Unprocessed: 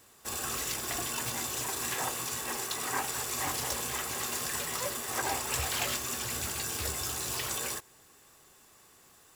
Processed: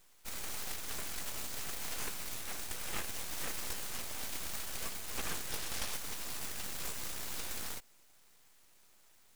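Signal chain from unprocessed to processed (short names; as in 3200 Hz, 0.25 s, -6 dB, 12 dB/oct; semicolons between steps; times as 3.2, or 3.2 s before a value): 5.51–5.93 weighting filter A; full-wave rectifier; gain -3.5 dB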